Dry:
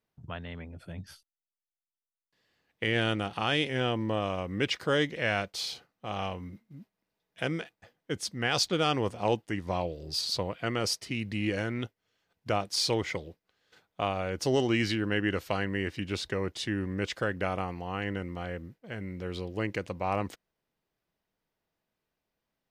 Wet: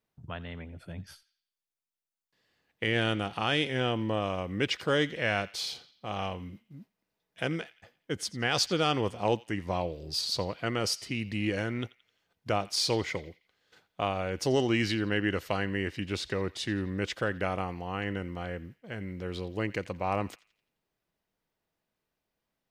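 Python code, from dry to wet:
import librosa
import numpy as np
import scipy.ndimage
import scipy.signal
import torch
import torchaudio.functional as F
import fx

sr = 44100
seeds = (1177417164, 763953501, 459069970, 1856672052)

y = fx.echo_banded(x, sr, ms=86, feedback_pct=47, hz=3000.0, wet_db=-17.0)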